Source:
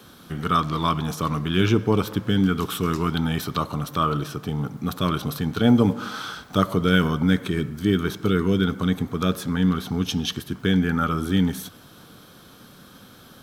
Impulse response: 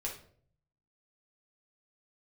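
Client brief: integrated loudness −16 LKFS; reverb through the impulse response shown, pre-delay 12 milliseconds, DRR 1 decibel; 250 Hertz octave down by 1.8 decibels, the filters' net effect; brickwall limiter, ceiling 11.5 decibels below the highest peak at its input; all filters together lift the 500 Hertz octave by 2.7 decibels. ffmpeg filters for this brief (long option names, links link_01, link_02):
-filter_complex "[0:a]equalizer=frequency=250:width_type=o:gain=-3.5,equalizer=frequency=500:width_type=o:gain=4.5,alimiter=limit=-15.5dB:level=0:latency=1,asplit=2[link_01][link_02];[1:a]atrim=start_sample=2205,adelay=12[link_03];[link_02][link_03]afir=irnorm=-1:irlink=0,volume=-2dB[link_04];[link_01][link_04]amix=inputs=2:normalize=0,volume=8.5dB"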